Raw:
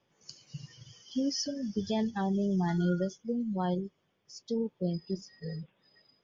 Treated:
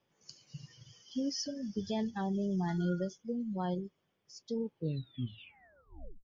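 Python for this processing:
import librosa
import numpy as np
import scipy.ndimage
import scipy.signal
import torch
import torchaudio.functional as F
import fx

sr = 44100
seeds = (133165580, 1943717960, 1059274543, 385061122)

y = fx.tape_stop_end(x, sr, length_s=1.56)
y = y * 10.0 ** (-4.0 / 20.0)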